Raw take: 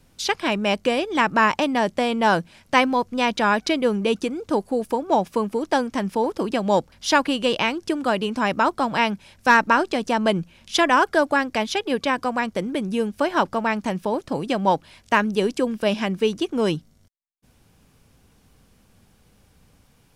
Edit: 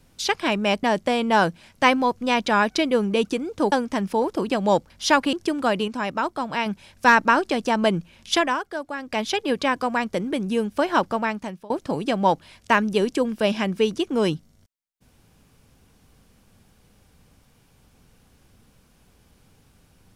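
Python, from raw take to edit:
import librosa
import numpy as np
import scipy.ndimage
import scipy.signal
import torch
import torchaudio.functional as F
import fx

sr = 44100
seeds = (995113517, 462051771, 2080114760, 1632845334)

y = fx.edit(x, sr, fx.cut(start_s=0.83, length_s=0.91),
    fx.cut(start_s=4.63, length_s=1.11),
    fx.cut(start_s=7.35, length_s=0.4),
    fx.clip_gain(start_s=8.3, length_s=0.78, db=-5.0),
    fx.fade_down_up(start_s=10.75, length_s=0.92, db=-11.5, fade_s=0.27),
    fx.fade_out_to(start_s=13.55, length_s=0.57, floor_db=-23.5), tone=tone)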